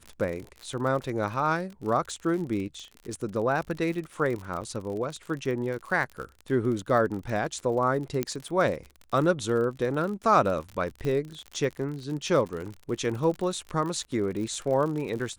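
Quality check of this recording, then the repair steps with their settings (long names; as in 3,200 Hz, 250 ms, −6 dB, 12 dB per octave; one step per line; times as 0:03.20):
surface crackle 49 per second −33 dBFS
0:04.61–0:04.62: drop-out 7.9 ms
0:08.23: click −13 dBFS
0:11.05: click −20 dBFS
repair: click removal
repair the gap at 0:04.61, 7.9 ms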